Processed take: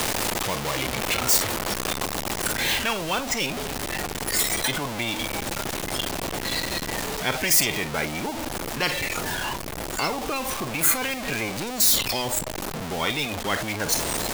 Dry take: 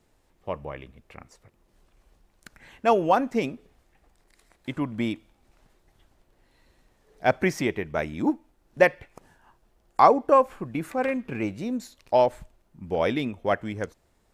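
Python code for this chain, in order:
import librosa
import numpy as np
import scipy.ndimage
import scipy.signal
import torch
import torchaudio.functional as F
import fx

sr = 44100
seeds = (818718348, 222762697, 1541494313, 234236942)

y = x + 0.5 * 10.0 ** (-24.5 / 20.0) * np.sign(x)
y = fx.dynamic_eq(y, sr, hz=1500.0, q=1.0, threshold_db=-37.0, ratio=4.0, max_db=-8)
y = fx.noise_reduce_blind(y, sr, reduce_db=22)
y = fx.rider(y, sr, range_db=4, speed_s=2.0)
y = fx.spectral_comp(y, sr, ratio=10.0)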